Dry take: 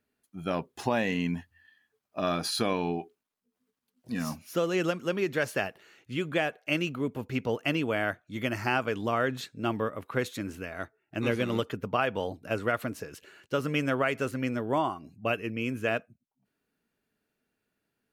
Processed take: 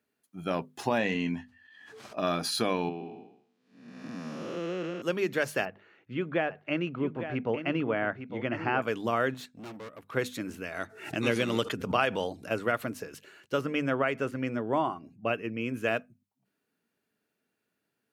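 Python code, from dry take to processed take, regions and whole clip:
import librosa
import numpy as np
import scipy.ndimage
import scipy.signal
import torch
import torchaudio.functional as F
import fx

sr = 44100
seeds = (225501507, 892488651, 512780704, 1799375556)

y = fx.chain(x, sr, fx.lowpass(hz=6300.0, slope=12),
    fx.doubler(ms=20.0, db=-10),
    fx.pre_swell(db_per_s=33.0), at=(0.98, 2.18))
y = fx.chain(y, sr, fx.spec_blur(span_ms=396.0),
    fx.bandpass_edges(low_hz=140.0, high_hz=4600.0),
    fx.band_squash(depth_pct=40), at=(2.89, 5.02))
y = fx.chain(y, sr, fx.lowpass(hz=2100.0, slope=12),
    fx.echo_single(ms=855, db=-9.5), at=(5.65, 8.82))
y = fx.chain(y, sr, fx.transient(attack_db=-1, sustain_db=-8),
    fx.tube_stage(drive_db=40.0, bias=0.35), at=(9.34, 10.11))
y = fx.chain(y, sr, fx.lowpass(hz=10000.0, slope=12),
    fx.high_shelf(hz=3200.0, db=8.0),
    fx.pre_swell(db_per_s=99.0), at=(10.65, 12.49))
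y = fx.chain(y, sr, fx.high_shelf(hz=5000.0, db=-12.0),
    fx.notch(hz=4100.0, q=13.0), at=(13.61, 15.74))
y = scipy.signal.sosfilt(scipy.signal.butter(2, 110.0, 'highpass', fs=sr, output='sos'), y)
y = fx.hum_notches(y, sr, base_hz=50, count=5)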